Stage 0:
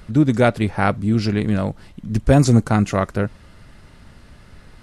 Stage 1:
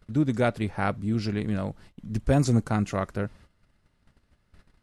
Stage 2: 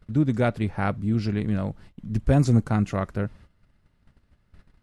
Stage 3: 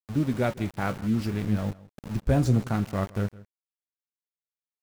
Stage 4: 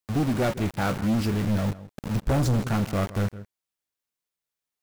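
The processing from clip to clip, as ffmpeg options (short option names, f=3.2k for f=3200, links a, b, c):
-af "agate=range=-15dB:threshold=-40dB:ratio=16:detection=peak,volume=-8.5dB"
-af "bass=f=250:g=4,treble=f=4k:g=-4"
-filter_complex "[0:a]flanger=delay=9:depth=7.9:regen=58:speed=0.63:shape=triangular,aeval=exprs='val(0)*gte(abs(val(0)),0.0133)':c=same,asplit=2[a][b];[b]adelay=163.3,volume=-20dB,highshelf=f=4k:g=-3.67[c];[a][c]amix=inputs=2:normalize=0,volume=1.5dB"
-af "asoftclip=type=tanh:threshold=-27dB,volume=7.5dB"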